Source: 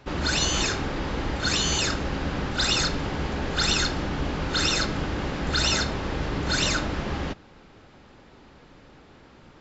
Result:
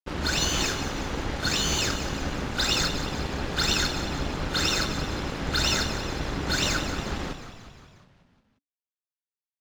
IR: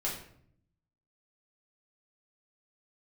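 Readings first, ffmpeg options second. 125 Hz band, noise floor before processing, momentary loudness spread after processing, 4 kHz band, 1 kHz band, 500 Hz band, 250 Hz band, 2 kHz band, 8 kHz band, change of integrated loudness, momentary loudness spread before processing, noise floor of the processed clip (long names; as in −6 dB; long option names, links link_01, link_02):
−2.0 dB, −52 dBFS, 8 LU, −1.0 dB, −1.5 dB, −1.5 dB, −2.0 dB, −1.0 dB, can't be measured, −1.0 dB, 7 LU, below −85 dBFS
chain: -filter_complex "[0:a]aeval=exprs='sgn(val(0))*max(abs(val(0))-0.0141,0)':channel_layout=same,asplit=8[link_01][link_02][link_03][link_04][link_05][link_06][link_07][link_08];[link_02]adelay=179,afreqshift=-41,volume=-11dB[link_09];[link_03]adelay=358,afreqshift=-82,volume=-15.3dB[link_10];[link_04]adelay=537,afreqshift=-123,volume=-19.6dB[link_11];[link_05]adelay=716,afreqshift=-164,volume=-23.9dB[link_12];[link_06]adelay=895,afreqshift=-205,volume=-28.2dB[link_13];[link_07]adelay=1074,afreqshift=-246,volume=-32.5dB[link_14];[link_08]adelay=1253,afreqshift=-287,volume=-36.8dB[link_15];[link_01][link_09][link_10][link_11][link_12][link_13][link_14][link_15]amix=inputs=8:normalize=0"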